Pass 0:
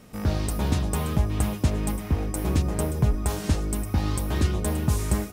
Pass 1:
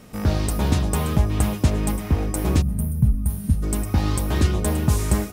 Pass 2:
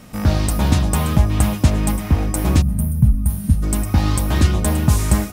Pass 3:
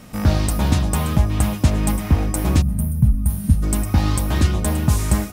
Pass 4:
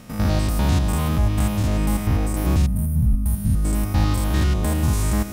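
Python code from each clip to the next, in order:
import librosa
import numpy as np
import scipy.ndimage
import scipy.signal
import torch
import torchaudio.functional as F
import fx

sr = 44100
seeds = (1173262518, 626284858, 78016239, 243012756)

y1 = fx.spec_box(x, sr, start_s=2.62, length_s=1.01, low_hz=260.0, high_hz=8700.0, gain_db=-19)
y1 = y1 * 10.0 ** (4.0 / 20.0)
y2 = fx.peak_eq(y1, sr, hz=420.0, db=-7.5, octaves=0.41)
y2 = y2 * 10.0 ** (4.5 / 20.0)
y3 = fx.rider(y2, sr, range_db=10, speed_s=0.5)
y3 = y3 * 10.0 ** (-1.5 / 20.0)
y4 = fx.spec_steps(y3, sr, hold_ms=100)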